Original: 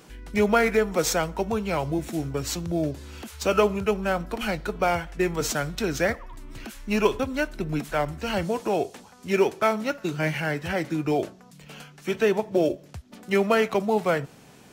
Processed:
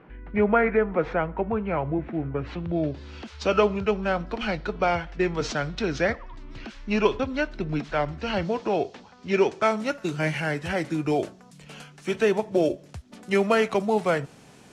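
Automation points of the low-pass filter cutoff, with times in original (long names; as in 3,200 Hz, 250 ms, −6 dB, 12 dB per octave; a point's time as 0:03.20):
low-pass filter 24 dB per octave
0:02.35 2,200 Hz
0:03.09 5,200 Hz
0:09.28 5,200 Hz
0:09.93 11,000 Hz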